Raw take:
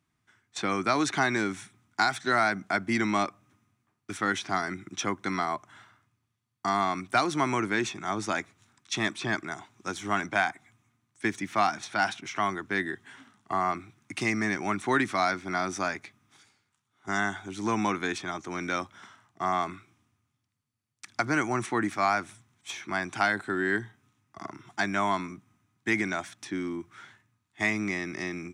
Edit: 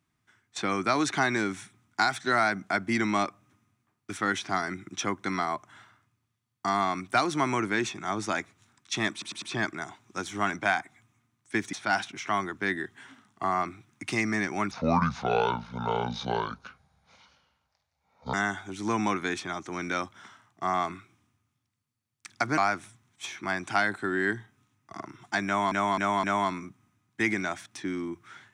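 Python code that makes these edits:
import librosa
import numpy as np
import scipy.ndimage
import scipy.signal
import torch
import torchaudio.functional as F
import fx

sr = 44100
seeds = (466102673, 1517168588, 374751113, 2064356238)

y = fx.edit(x, sr, fx.stutter(start_s=9.12, slice_s=0.1, count=4),
    fx.cut(start_s=11.43, length_s=0.39),
    fx.speed_span(start_s=14.8, length_s=2.32, speed=0.64),
    fx.cut(start_s=21.36, length_s=0.67),
    fx.repeat(start_s=24.91, length_s=0.26, count=4), tone=tone)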